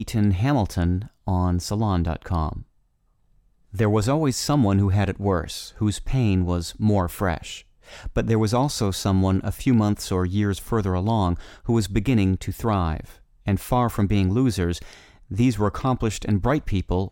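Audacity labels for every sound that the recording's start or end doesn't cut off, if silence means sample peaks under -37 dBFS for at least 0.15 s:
1.270000	2.620000	sound
3.730000	7.600000	sound
7.880000	13.140000	sound
13.460000	14.970000	sound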